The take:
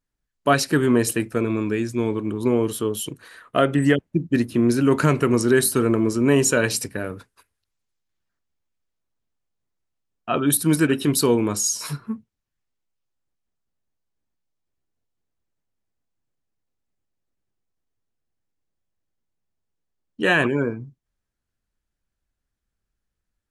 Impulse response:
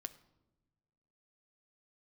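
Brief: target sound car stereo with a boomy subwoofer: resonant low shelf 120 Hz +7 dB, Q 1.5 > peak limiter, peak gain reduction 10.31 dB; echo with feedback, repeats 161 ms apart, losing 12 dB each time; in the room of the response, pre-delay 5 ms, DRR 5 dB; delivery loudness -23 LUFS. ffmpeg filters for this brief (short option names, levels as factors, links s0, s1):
-filter_complex "[0:a]aecho=1:1:161|322|483:0.251|0.0628|0.0157,asplit=2[s0][s1];[1:a]atrim=start_sample=2205,adelay=5[s2];[s1][s2]afir=irnorm=-1:irlink=0,volume=0.891[s3];[s0][s3]amix=inputs=2:normalize=0,lowshelf=f=120:t=q:w=1.5:g=7,volume=1.12,alimiter=limit=0.224:level=0:latency=1"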